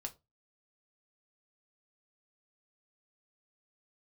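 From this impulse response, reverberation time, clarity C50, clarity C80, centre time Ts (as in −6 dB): non-exponential decay, 19.5 dB, 28.0 dB, 7 ms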